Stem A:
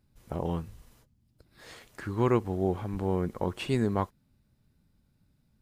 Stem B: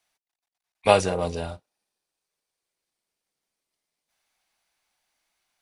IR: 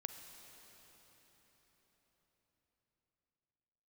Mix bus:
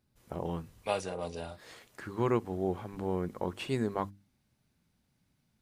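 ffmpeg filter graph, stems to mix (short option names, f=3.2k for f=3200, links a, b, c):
-filter_complex "[0:a]bandreject=f=50:t=h:w=6,bandreject=f=100:t=h:w=6,bandreject=f=150:t=h:w=6,bandreject=f=200:t=h:w=6,bandreject=f=250:t=h:w=6,bandreject=f=300:t=h:w=6,volume=-3dB[a];[1:a]volume=-7.5dB,afade=t=in:st=0.79:d=0.7:silence=0.334965[b];[a][b]amix=inputs=2:normalize=0,lowshelf=f=64:g=-11.5"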